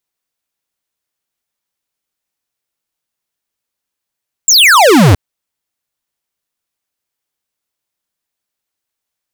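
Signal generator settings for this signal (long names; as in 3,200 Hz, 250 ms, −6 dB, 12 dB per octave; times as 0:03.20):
single falling chirp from 7,700 Hz, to 80 Hz, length 0.67 s square, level −5.5 dB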